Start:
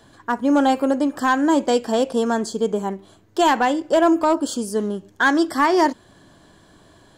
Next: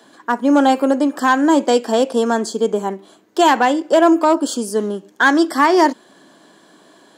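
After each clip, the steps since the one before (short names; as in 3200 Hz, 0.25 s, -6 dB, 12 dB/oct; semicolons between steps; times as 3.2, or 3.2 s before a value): HPF 210 Hz 24 dB/oct; gain +4 dB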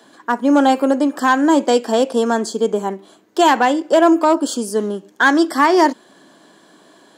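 nothing audible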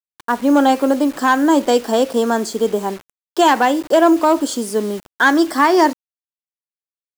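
bit-crush 6-bit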